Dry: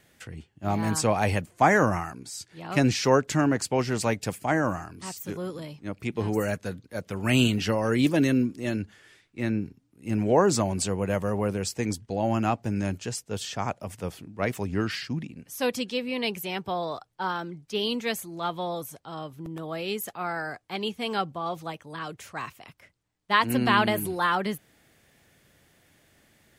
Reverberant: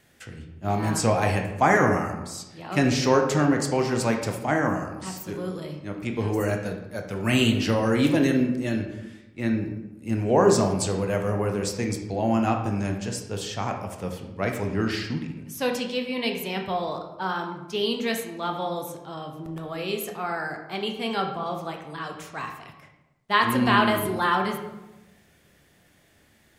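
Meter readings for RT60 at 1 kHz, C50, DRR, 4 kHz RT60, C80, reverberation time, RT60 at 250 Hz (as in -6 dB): 0.95 s, 6.5 dB, 3.0 dB, 0.60 s, 8.5 dB, 1.0 s, 1.2 s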